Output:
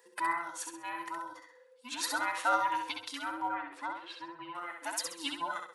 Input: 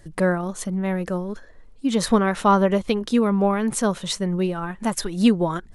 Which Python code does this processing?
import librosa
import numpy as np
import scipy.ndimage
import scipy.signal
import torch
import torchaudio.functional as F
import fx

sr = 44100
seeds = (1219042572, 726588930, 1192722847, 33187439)

p1 = fx.band_invert(x, sr, width_hz=500)
p2 = scipy.signal.sosfilt(scipy.signal.butter(2, 980.0, 'highpass', fs=sr, output='sos'), p1)
p3 = fx.quant_float(p2, sr, bits=6)
p4 = fx.air_absorb(p3, sr, metres=420.0, at=(3.47, 4.55))
p5 = p4 + fx.echo_feedback(p4, sr, ms=66, feedback_pct=36, wet_db=-5.0, dry=0)
y = p5 * librosa.db_to_amplitude(-7.0)